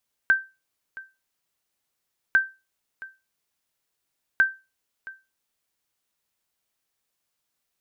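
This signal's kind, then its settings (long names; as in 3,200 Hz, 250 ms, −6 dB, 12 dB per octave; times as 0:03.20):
ping with an echo 1,560 Hz, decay 0.26 s, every 2.05 s, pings 3, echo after 0.67 s, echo −20 dB −10.5 dBFS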